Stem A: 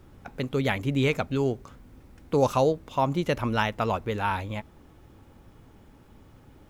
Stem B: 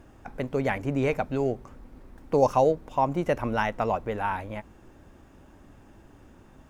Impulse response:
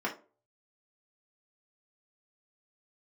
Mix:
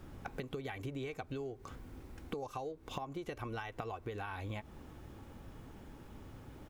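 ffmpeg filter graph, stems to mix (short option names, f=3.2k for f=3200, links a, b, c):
-filter_complex "[0:a]volume=0.5dB[a];[1:a]equalizer=f=530:t=o:w=0.77:g=-3.5,adelay=2.7,volume=-9dB,asplit=2[b][c];[c]apad=whole_len=295233[d];[a][d]sidechaincompress=threshold=-43dB:ratio=4:attack=16:release=186[e];[e][b]amix=inputs=2:normalize=0,acompressor=threshold=-38dB:ratio=10"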